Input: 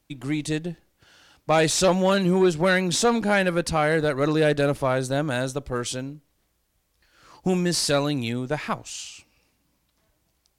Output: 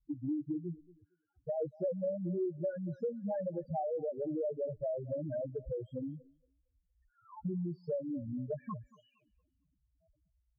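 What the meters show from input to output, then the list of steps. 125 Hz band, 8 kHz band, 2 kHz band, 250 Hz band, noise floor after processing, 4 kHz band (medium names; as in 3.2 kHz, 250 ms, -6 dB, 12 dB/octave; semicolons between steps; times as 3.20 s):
-14.5 dB, under -40 dB, under -35 dB, -13.5 dB, -80 dBFS, under -40 dB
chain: loudest bins only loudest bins 2; on a send: thinning echo 230 ms, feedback 26%, high-pass 420 Hz, level -23 dB; on the sum: dynamic bell 230 Hz, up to -7 dB, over -48 dBFS, Q 7; low-pass sweep 330 Hz -> 900 Hz, 0.78–3.23 s; compression 4:1, threshold -36 dBFS, peak gain reduction 19 dB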